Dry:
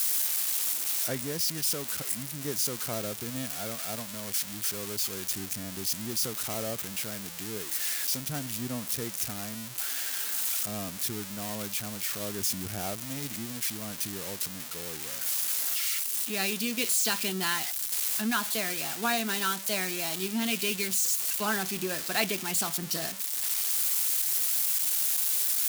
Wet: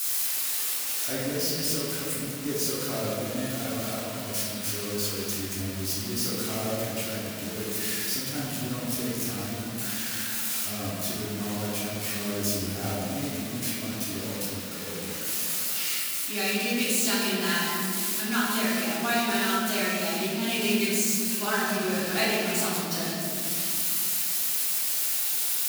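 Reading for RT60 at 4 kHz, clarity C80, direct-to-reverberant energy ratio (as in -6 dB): 1.4 s, 0.5 dB, -8.0 dB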